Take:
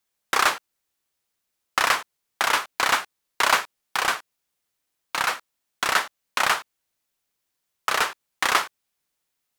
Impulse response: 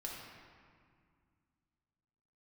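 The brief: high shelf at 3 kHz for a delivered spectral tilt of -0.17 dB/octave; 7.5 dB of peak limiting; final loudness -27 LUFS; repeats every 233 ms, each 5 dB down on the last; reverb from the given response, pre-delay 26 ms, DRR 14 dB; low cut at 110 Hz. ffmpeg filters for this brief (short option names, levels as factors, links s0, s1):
-filter_complex "[0:a]highpass=110,highshelf=f=3000:g=5.5,alimiter=limit=0.376:level=0:latency=1,aecho=1:1:233|466|699|932|1165|1398|1631:0.562|0.315|0.176|0.0988|0.0553|0.031|0.0173,asplit=2[s0][s1];[1:a]atrim=start_sample=2205,adelay=26[s2];[s1][s2]afir=irnorm=-1:irlink=0,volume=0.224[s3];[s0][s3]amix=inputs=2:normalize=0,volume=0.708"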